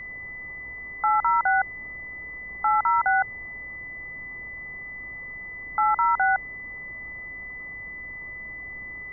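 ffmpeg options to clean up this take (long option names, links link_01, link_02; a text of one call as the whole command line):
ffmpeg -i in.wav -af "bandreject=frequency=54.7:width_type=h:width=4,bandreject=frequency=109.4:width_type=h:width=4,bandreject=frequency=164.1:width_type=h:width=4,bandreject=frequency=218.8:width_type=h:width=4,bandreject=frequency=2000:width=30,afftdn=noise_reduction=30:noise_floor=-38" out.wav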